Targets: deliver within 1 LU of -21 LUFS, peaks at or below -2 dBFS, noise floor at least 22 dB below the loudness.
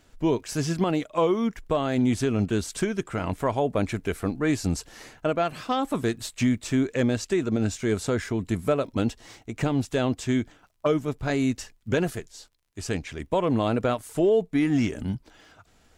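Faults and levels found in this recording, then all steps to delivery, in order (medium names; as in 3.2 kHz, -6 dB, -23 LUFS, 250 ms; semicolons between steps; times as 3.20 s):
tick rate 28 per s; loudness -26.5 LUFS; peak level -13.0 dBFS; loudness target -21.0 LUFS
-> de-click; trim +5.5 dB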